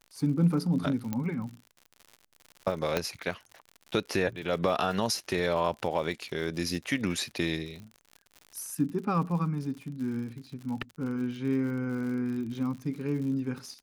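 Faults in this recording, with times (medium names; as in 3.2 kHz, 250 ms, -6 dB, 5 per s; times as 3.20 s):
crackle 76 per s -38 dBFS
1.13 s: pop -18 dBFS
2.97 s: pop -12 dBFS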